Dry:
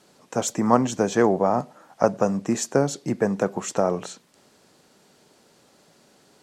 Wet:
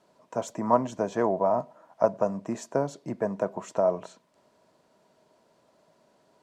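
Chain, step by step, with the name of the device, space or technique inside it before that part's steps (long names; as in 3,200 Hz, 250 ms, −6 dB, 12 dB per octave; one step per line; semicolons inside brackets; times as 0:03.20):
inside a helmet (high-shelf EQ 3,400 Hz −8 dB; hollow resonant body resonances 640/970 Hz, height 13 dB, ringing for 45 ms)
level −8.5 dB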